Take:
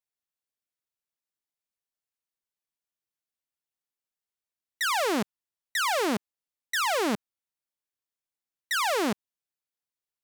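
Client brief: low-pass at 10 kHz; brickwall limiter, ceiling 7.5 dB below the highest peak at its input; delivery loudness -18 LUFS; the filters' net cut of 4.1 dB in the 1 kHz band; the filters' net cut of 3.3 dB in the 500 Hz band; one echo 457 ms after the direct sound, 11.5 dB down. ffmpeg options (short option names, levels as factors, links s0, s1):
-af "lowpass=10000,equalizer=f=500:t=o:g=-3,equalizer=f=1000:t=o:g=-4.5,alimiter=level_in=1.5:limit=0.0631:level=0:latency=1,volume=0.668,aecho=1:1:457:0.266,volume=9.44"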